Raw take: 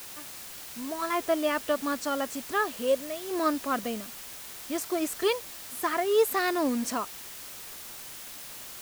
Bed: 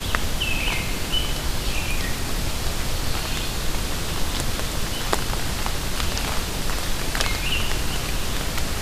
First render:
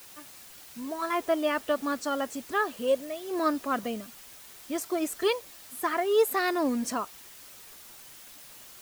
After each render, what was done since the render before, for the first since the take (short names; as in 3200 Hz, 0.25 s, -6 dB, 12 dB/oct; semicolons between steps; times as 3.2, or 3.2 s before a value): denoiser 7 dB, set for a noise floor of -43 dBFS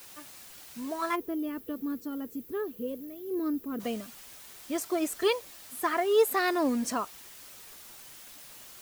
1.15–3.8 spectral gain 510–11000 Hz -17 dB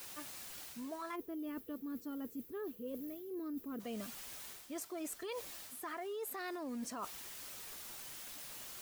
limiter -23.5 dBFS, peak gain reduction 10 dB; reverse; compressor, threshold -41 dBFS, peak gain reduction 13 dB; reverse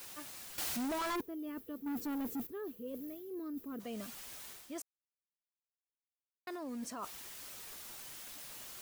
0.58–1.21 sample leveller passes 5; 1.86–2.47 sample leveller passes 3; 4.82–6.47 mute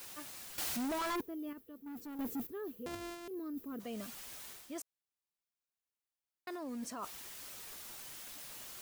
1.53–2.19 gain -8 dB; 2.86–3.28 sample sorter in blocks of 128 samples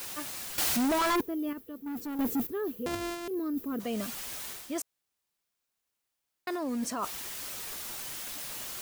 gain +9.5 dB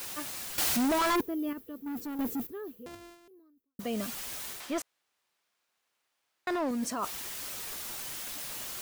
1.99–3.79 fade out quadratic; 4.6–6.71 overdrive pedal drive 17 dB, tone 2500 Hz, clips at -23 dBFS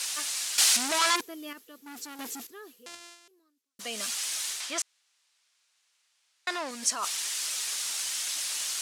weighting filter ITU-R 468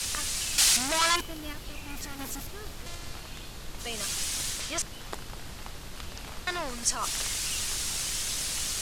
add bed -16 dB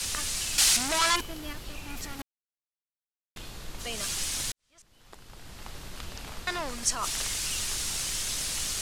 2.22–3.36 mute; 4.52–5.77 fade in quadratic